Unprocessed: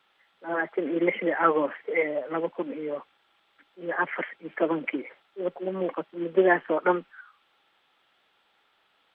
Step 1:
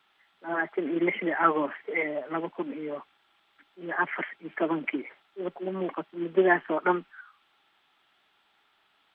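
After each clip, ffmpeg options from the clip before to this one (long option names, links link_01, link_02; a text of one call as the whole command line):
ffmpeg -i in.wav -af "equalizer=frequency=510:width_type=o:width=0.28:gain=-10" out.wav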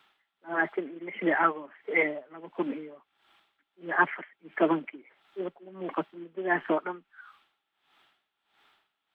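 ffmpeg -i in.wav -af "aeval=exprs='val(0)*pow(10,-20*(0.5-0.5*cos(2*PI*1.5*n/s))/20)':channel_layout=same,volume=4dB" out.wav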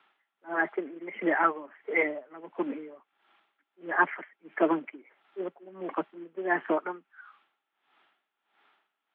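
ffmpeg -i in.wav -filter_complex "[0:a]acrossover=split=180 3100:gain=0.0708 1 0.112[link_01][link_02][link_03];[link_01][link_02][link_03]amix=inputs=3:normalize=0" out.wav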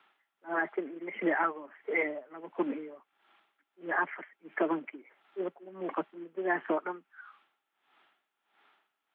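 ffmpeg -i in.wav -af "alimiter=limit=-18.5dB:level=0:latency=1:release=313" out.wav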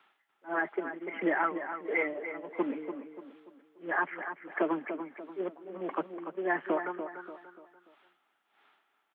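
ffmpeg -i in.wav -filter_complex "[0:a]asplit=2[link_01][link_02];[link_02]adelay=291,lowpass=frequency=2800:poles=1,volume=-8.5dB,asplit=2[link_03][link_04];[link_04]adelay=291,lowpass=frequency=2800:poles=1,volume=0.4,asplit=2[link_05][link_06];[link_06]adelay=291,lowpass=frequency=2800:poles=1,volume=0.4,asplit=2[link_07][link_08];[link_08]adelay=291,lowpass=frequency=2800:poles=1,volume=0.4[link_09];[link_01][link_03][link_05][link_07][link_09]amix=inputs=5:normalize=0" out.wav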